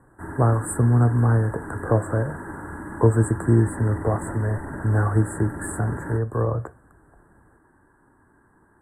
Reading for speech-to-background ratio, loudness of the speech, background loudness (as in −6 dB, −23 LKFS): 12.0 dB, −23.0 LKFS, −35.0 LKFS